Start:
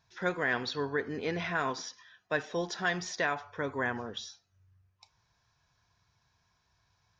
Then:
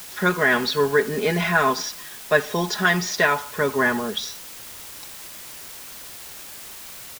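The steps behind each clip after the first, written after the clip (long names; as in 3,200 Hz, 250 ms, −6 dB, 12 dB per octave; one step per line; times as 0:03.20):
comb filter 4.8 ms, depth 71%
in parallel at −11 dB: bit-depth reduction 6 bits, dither triangular
on the sum: level +8 dB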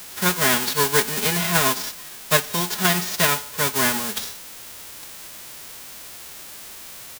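spectral envelope flattened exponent 0.3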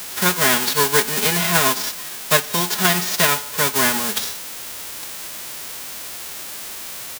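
low-shelf EQ 140 Hz −5.5 dB
in parallel at +1.5 dB: downward compressor, threshold −27 dBFS, peak gain reduction 14.5 dB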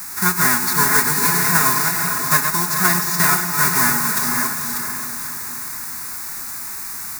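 delay that plays each chunk backwards 344 ms, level −6 dB
phaser with its sweep stopped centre 1,300 Hz, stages 4
feedback delay with all-pass diffusion 492 ms, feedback 44%, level −5.5 dB
level +2 dB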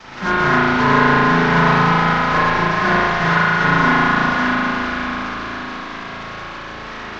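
variable-slope delta modulation 32 kbit/s
spring reverb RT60 2.4 s, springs 36 ms, chirp 30 ms, DRR −10 dB
level −1 dB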